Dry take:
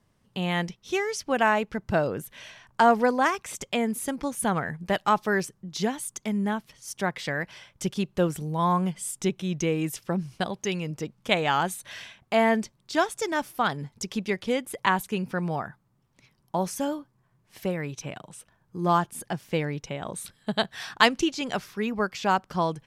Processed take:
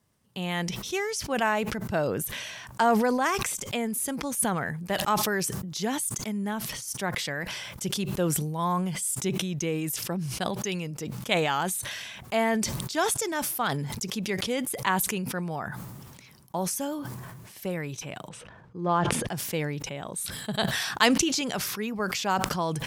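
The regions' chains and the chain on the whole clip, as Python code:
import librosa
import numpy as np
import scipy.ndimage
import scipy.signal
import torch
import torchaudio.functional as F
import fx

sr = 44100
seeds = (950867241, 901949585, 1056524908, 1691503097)

y = fx.chain(x, sr, fx.lowpass(hz=3000.0, slope=12),
    fx.peak_eq(hz=490.0, db=5.5, octaves=0.41),
    fx.sustainer(db_per_s=50.0), at=(18.29, 19.27))
y = scipy.signal.sosfilt(scipy.signal.butter(2, 43.0, 'highpass', fs=sr, output='sos'), y)
y = fx.high_shelf(y, sr, hz=6800.0, db=11.5)
y = fx.sustainer(y, sr, db_per_s=29.0)
y = y * 10.0 ** (-4.0 / 20.0)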